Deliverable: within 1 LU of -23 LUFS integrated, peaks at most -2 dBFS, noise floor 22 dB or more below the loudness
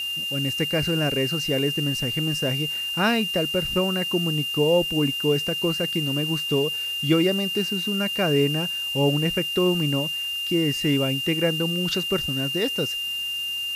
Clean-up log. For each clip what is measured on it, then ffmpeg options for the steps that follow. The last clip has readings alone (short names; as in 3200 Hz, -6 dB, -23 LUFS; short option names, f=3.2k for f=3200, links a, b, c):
steady tone 2800 Hz; tone level -26 dBFS; noise floor -29 dBFS; noise floor target -45 dBFS; loudness -23.0 LUFS; peak -8.5 dBFS; loudness target -23.0 LUFS
-> -af "bandreject=f=2.8k:w=30"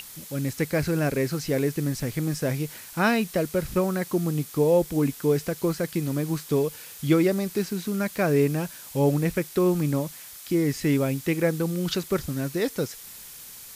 steady tone none; noise floor -43 dBFS; noise floor target -48 dBFS
-> -af "afftdn=nr=6:nf=-43"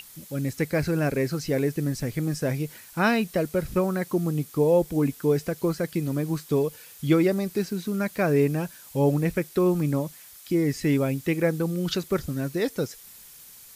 noise floor -48 dBFS; loudness -26.0 LUFS; peak -9.5 dBFS; loudness target -23.0 LUFS
-> -af "volume=3dB"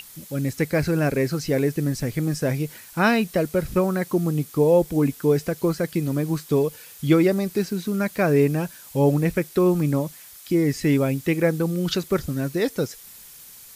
loudness -23.0 LUFS; peak -6.5 dBFS; noise floor -45 dBFS